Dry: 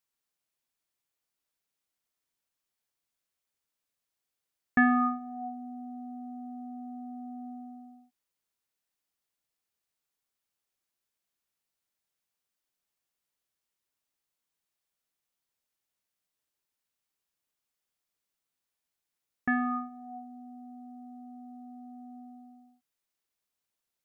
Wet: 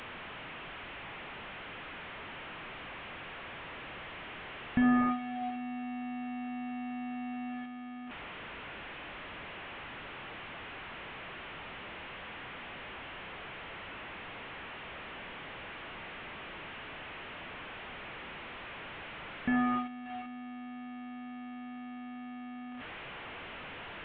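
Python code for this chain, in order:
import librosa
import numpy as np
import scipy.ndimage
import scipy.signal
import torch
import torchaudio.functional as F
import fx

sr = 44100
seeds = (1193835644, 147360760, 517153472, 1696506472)

y = fx.delta_mod(x, sr, bps=16000, step_db=-39.0)
y = y * librosa.db_to_amplitude(1.5)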